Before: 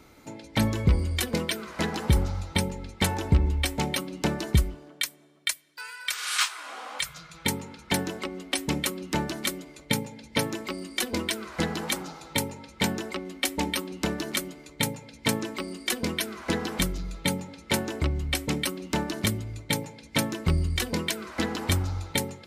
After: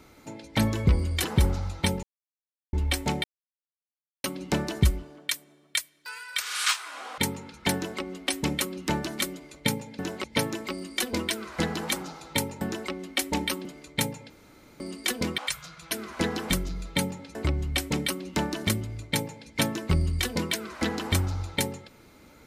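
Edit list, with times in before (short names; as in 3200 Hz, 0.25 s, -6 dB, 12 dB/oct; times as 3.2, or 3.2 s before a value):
1.24–1.96 cut
2.75–3.45 mute
3.96 insert silence 1.00 s
6.9–7.43 move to 16.2
8.01–8.26 copy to 10.24
12.61–12.87 cut
13.91–14.47 cut
15.12–15.62 room tone
17.64–17.92 cut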